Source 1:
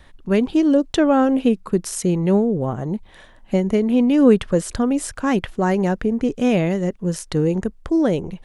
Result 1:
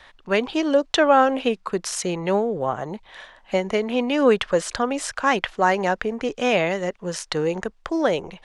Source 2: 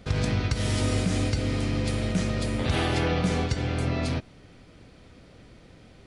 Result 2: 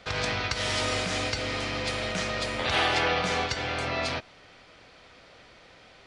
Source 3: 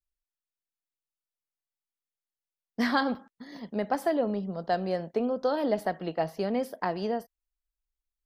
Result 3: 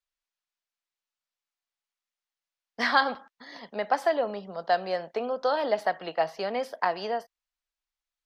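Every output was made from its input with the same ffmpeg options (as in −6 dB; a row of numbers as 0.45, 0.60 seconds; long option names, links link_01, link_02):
-filter_complex "[0:a]acrossover=split=550 6900:gain=0.141 1 0.158[link_01][link_02][link_03];[link_01][link_02][link_03]amix=inputs=3:normalize=0,volume=6dB"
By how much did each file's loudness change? −3.0, −1.0, +1.5 LU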